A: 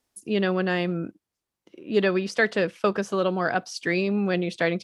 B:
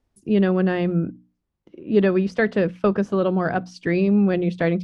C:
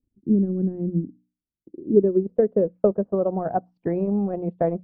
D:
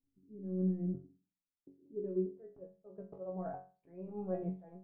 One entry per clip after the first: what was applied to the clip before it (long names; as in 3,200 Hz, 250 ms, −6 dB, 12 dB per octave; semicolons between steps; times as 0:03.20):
RIAA equalisation playback; mains-hum notches 60/120/180/240/300 Hz
transient designer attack +5 dB, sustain −11 dB; low-pass filter sweep 280 Hz → 750 Hz, 0:01.41–0:03.38; level −7 dB
mains-hum notches 50/100/150/200 Hz; volume swells 731 ms; resonators tuned to a chord F#2 fifth, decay 0.34 s; level +5 dB